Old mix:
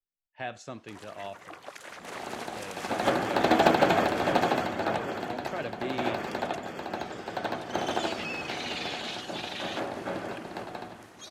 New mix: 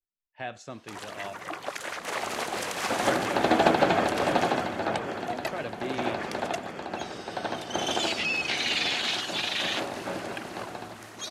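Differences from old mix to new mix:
first sound +9.0 dB
second sound: add low-pass filter 7,000 Hz

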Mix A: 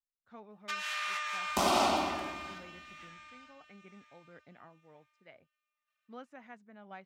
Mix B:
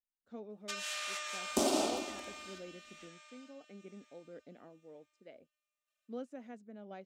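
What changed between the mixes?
second sound: send off
master: add graphic EQ with 10 bands 125 Hz −9 dB, 250 Hz +8 dB, 500 Hz +8 dB, 1,000 Hz −9 dB, 2,000 Hz −6 dB, 8,000 Hz +7 dB

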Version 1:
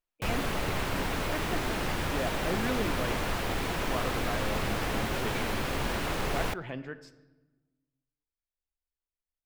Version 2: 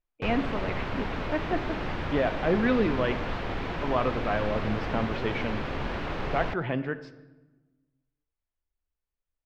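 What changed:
speech +9.5 dB
master: add high-frequency loss of the air 230 metres

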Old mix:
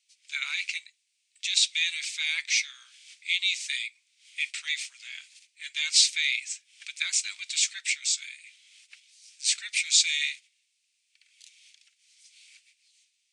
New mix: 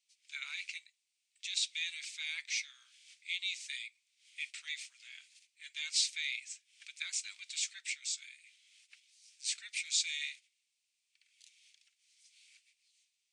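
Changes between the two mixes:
speech −11.0 dB
background −8.5 dB

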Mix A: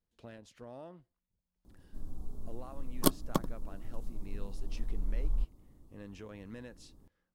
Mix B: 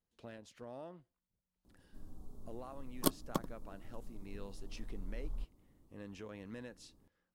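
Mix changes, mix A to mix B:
background −4.5 dB
master: add low-shelf EQ 100 Hz −6.5 dB

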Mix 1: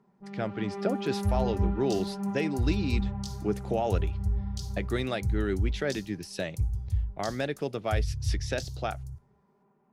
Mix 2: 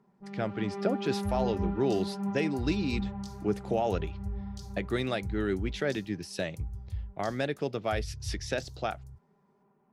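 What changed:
second sound −7.0 dB
reverb: off

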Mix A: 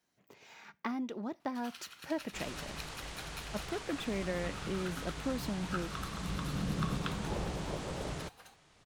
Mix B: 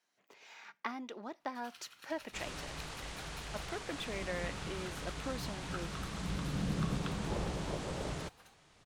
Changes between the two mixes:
speech: add meter weighting curve A
first sound −5.5 dB

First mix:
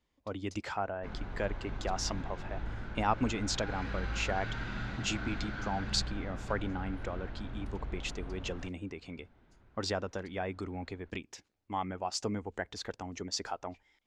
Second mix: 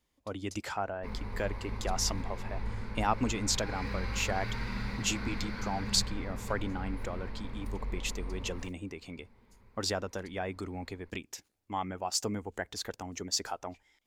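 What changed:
background: add EQ curve with evenly spaced ripples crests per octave 0.9, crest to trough 11 dB
master: remove high-frequency loss of the air 89 metres

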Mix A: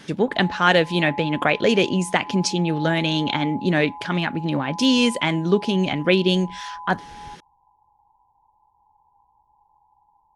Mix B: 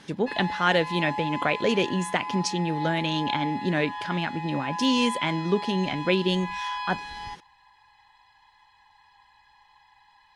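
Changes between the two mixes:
speech −5.5 dB
background: remove Butterworth low-pass 990 Hz 96 dB per octave

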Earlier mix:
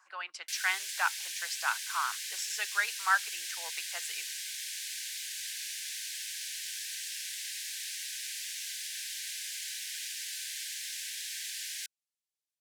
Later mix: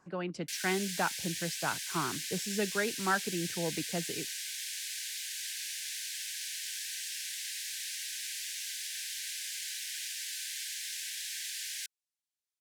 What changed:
speech −5.0 dB
master: remove high-pass filter 1,000 Hz 24 dB per octave

